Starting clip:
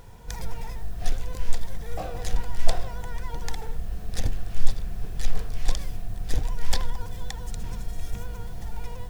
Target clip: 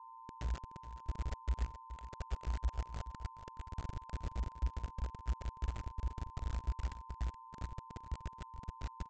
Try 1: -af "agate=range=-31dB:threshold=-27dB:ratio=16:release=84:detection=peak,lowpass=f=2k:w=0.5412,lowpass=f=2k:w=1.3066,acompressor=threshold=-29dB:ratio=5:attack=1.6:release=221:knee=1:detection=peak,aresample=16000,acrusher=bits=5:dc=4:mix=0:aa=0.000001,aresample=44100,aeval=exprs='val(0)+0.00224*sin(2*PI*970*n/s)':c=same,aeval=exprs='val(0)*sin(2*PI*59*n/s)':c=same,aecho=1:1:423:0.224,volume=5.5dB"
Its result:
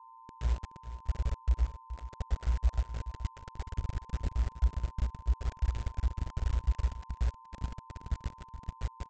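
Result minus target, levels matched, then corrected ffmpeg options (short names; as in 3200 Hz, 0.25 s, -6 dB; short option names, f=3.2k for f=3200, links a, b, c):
compressor: peak gain reduction -8 dB
-af "agate=range=-31dB:threshold=-27dB:ratio=16:release=84:detection=peak,lowpass=f=2k:w=0.5412,lowpass=f=2k:w=1.3066,acompressor=threshold=-39dB:ratio=5:attack=1.6:release=221:knee=1:detection=peak,aresample=16000,acrusher=bits=5:dc=4:mix=0:aa=0.000001,aresample=44100,aeval=exprs='val(0)+0.00224*sin(2*PI*970*n/s)':c=same,aeval=exprs='val(0)*sin(2*PI*59*n/s)':c=same,aecho=1:1:423:0.224,volume=5.5dB"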